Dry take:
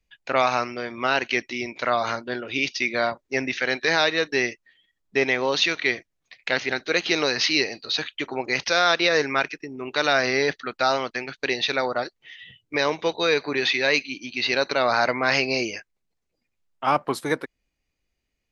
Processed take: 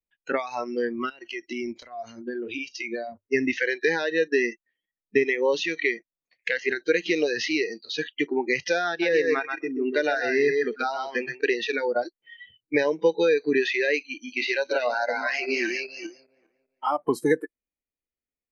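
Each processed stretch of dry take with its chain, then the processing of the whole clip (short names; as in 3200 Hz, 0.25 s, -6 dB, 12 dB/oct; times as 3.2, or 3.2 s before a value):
1.09–3.27 notches 50/100 Hz + compressor 20:1, threshold -28 dBFS
8.89–11.41 high shelf 7300 Hz -7 dB + thinning echo 0.13 s, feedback 16%, high-pass 170 Hz, level -4.5 dB
14.07–16.98 regenerating reverse delay 0.2 s, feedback 46%, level -5 dB + low shelf 220 Hz -9 dB + mismatched tape noise reduction decoder only
whole clip: compressor 8:1, threshold -23 dBFS; graphic EQ 250/500/2000/4000 Hz +6/+8/+5/-7 dB; spectral noise reduction 22 dB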